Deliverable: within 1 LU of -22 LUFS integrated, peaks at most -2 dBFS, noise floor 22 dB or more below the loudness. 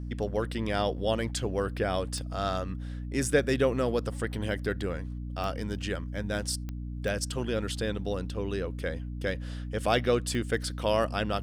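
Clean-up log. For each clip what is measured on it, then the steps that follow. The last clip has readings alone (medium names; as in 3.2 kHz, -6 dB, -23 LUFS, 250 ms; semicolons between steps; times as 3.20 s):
clicks found 5; hum 60 Hz; highest harmonic 300 Hz; hum level -34 dBFS; loudness -31.0 LUFS; peak level -10.5 dBFS; loudness target -22.0 LUFS
-> de-click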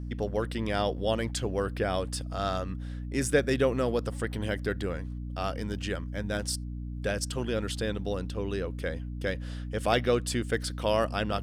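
clicks found 0; hum 60 Hz; highest harmonic 300 Hz; hum level -34 dBFS
-> hum notches 60/120/180/240/300 Hz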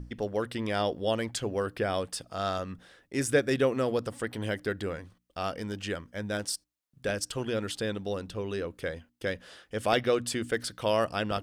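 hum not found; loudness -31.5 LUFS; peak level -9.5 dBFS; loudness target -22.0 LUFS
-> trim +9.5 dB; peak limiter -2 dBFS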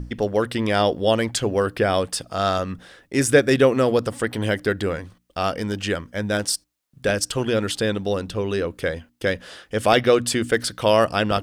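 loudness -22.0 LUFS; peak level -2.0 dBFS; noise floor -64 dBFS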